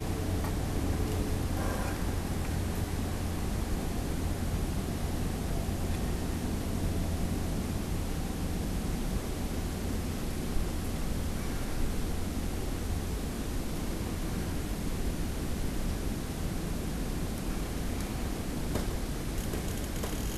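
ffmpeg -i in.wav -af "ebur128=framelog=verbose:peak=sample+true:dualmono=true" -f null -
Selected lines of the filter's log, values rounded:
Integrated loudness:
  I:         -31.5 LUFS
  Threshold: -41.4 LUFS
Loudness range:
  LRA:         2.0 LU
  Threshold: -51.6 LUFS
  LRA low:   -32.3 LUFS
  LRA high:  -30.4 LUFS
Sample peak:
  Peak:      -16.4 dBFS
True peak:
  Peak:      -16.3 dBFS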